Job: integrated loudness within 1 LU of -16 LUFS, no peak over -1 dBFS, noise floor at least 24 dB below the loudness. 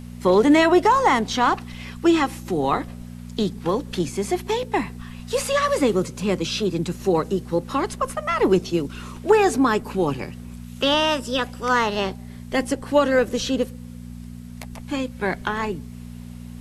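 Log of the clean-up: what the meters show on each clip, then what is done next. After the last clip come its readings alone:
hum 60 Hz; harmonics up to 240 Hz; hum level -34 dBFS; loudness -22.0 LUFS; peak -4.5 dBFS; loudness target -16.0 LUFS
-> de-hum 60 Hz, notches 4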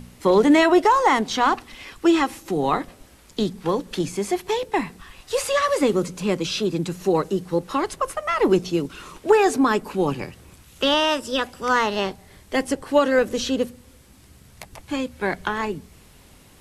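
hum none; loudness -22.0 LUFS; peak -5.0 dBFS; loudness target -16.0 LUFS
-> gain +6 dB; limiter -1 dBFS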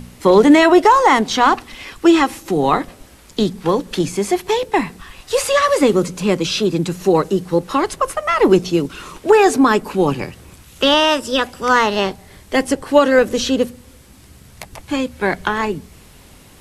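loudness -16.0 LUFS; peak -1.0 dBFS; noise floor -45 dBFS

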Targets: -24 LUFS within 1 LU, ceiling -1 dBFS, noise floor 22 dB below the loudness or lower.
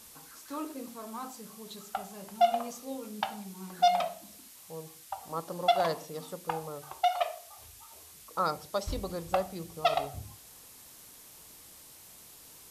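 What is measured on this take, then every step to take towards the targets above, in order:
noise floor -53 dBFS; noise floor target -55 dBFS; loudness -33.0 LUFS; peak -13.0 dBFS; loudness target -24.0 LUFS
-> denoiser 6 dB, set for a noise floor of -53 dBFS; gain +9 dB

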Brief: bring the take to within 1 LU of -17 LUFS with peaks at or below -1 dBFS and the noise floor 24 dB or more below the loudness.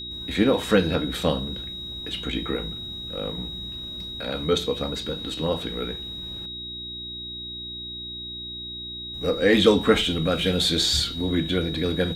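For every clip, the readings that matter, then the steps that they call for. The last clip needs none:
hum 60 Hz; harmonics up to 360 Hz; hum level -40 dBFS; steady tone 3800 Hz; tone level -33 dBFS; loudness -25.0 LUFS; peak -4.0 dBFS; loudness target -17.0 LUFS
-> de-hum 60 Hz, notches 6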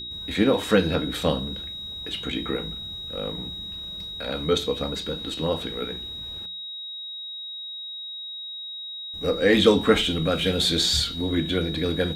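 hum none; steady tone 3800 Hz; tone level -33 dBFS
-> notch 3800 Hz, Q 30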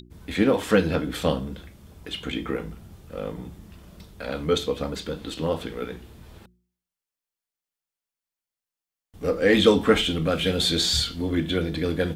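steady tone none; loudness -24.5 LUFS; peak -4.0 dBFS; loudness target -17.0 LUFS
-> gain +7.5 dB; limiter -1 dBFS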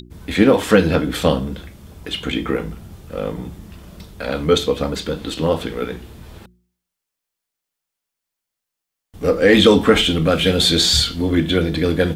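loudness -17.5 LUFS; peak -1.0 dBFS; noise floor -83 dBFS

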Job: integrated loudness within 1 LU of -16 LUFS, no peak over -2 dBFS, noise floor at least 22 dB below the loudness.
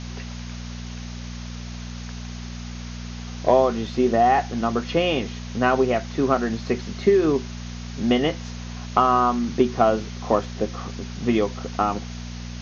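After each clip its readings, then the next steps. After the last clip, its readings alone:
hum 60 Hz; harmonics up to 240 Hz; hum level -31 dBFS; noise floor -34 dBFS; noise floor target -45 dBFS; loudness -22.5 LUFS; peak -5.0 dBFS; loudness target -16.0 LUFS
-> de-hum 60 Hz, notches 4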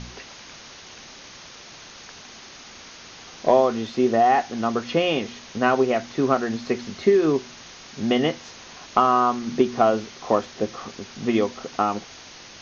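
hum none; noise floor -44 dBFS; noise floor target -45 dBFS
-> noise print and reduce 6 dB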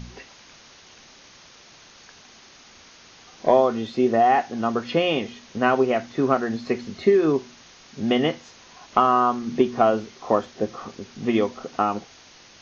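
noise floor -50 dBFS; loudness -22.5 LUFS; peak -5.5 dBFS; loudness target -16.0 LUFS
-> gain +6.5 dB; limiter -2 dBFS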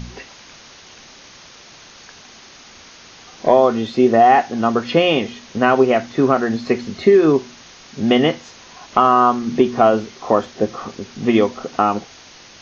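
loudness -16.5 LUFS; peak -2.0 dBFS; noise floor -43 dBFS

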